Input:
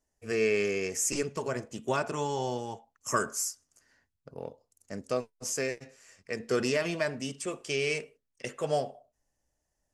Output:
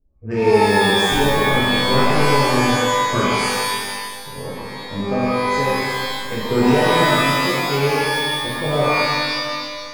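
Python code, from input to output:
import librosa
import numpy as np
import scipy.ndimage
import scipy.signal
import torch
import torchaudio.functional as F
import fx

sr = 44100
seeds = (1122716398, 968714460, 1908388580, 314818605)

y = fx.env_lowpass(x, sr, base_hz=480.0, full_db=-28.5)
y = fx.riaa(y, sr, side='playback')
y = fx.rev_shimmer(y, sr, seeds[0], rt60_s=1.7, semitones=12, shimmer_db=-2, drr_db=-7.0)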